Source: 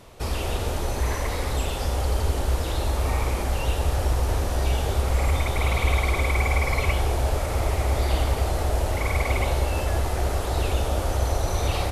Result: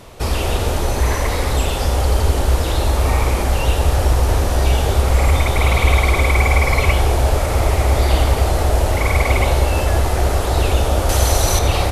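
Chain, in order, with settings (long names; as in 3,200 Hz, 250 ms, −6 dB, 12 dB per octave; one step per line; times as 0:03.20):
0:11.09–0:11.59: high-shelf EQ 2,400 Hz +9.5 dB
level +8 dB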